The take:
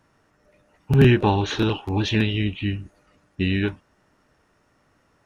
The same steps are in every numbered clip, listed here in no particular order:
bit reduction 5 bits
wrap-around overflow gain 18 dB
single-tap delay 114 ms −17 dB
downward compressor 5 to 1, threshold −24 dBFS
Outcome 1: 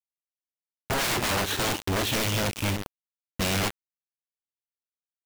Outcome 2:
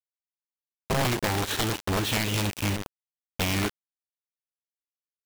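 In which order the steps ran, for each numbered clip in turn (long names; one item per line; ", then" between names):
single-tap delay, then wrap-around overflow, then downward compressor, then bit reduction
single-tap delay, then downward compressor, then bit reduction, then wrap-around overflow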